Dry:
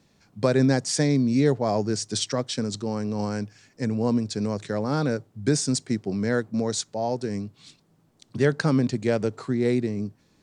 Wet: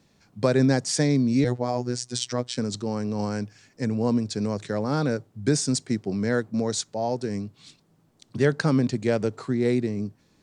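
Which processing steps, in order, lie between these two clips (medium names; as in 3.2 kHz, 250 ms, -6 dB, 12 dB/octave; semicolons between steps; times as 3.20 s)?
1.44–2.57 s: robot voice 123 Hz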